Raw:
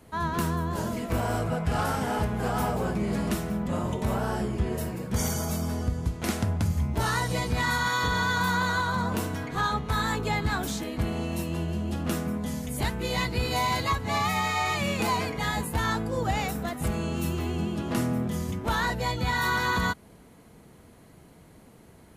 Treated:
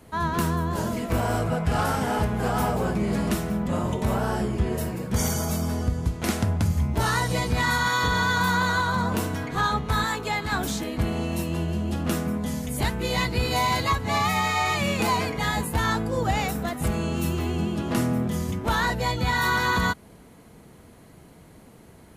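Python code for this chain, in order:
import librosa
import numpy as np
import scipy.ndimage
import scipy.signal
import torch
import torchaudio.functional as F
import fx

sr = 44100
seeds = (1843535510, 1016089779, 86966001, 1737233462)

y = fx.low_shelf(x, sr, hz=320.0, db=-10.0, at=(10.04, 10.52))
y = F.gain(torch.from_numpy(y), 3.0).numpy()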